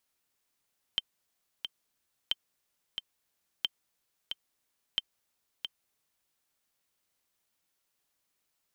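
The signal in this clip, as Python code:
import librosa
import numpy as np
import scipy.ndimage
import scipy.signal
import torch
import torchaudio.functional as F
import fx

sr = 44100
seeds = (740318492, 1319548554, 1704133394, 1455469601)

y = fx.click_track(sr, bpm=90, beats=2, bars=4, hz=3120.0, accent_db=7.0, level_db=-14.5)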